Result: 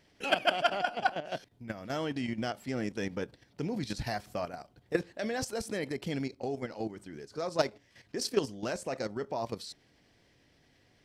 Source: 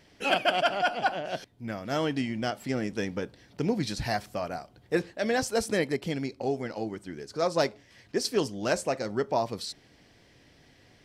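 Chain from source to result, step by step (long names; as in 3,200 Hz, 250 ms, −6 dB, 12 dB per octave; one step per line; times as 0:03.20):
output level in coarse steps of 11 dB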